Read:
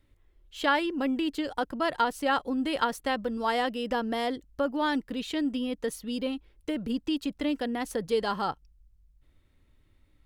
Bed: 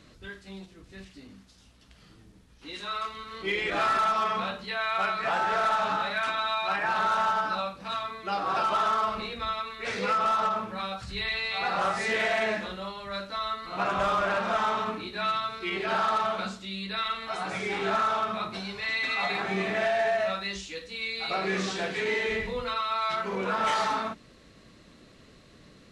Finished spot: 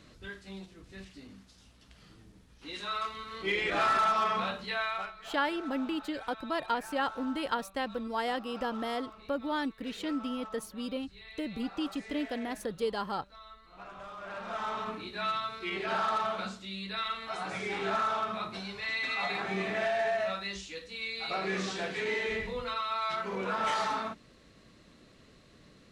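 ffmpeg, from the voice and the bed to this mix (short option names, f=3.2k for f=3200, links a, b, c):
-filter_complex "[0:a]adelay=4700,volume=-5dB[a];[1:a]volume=14dB,afade=t=out:st=4.77:d=0.35:silence=0.125893,afade=t=in:st=14.16:d=0.94:silence=0.16788[b];[a][b]amix=inputs=2:normalize=0"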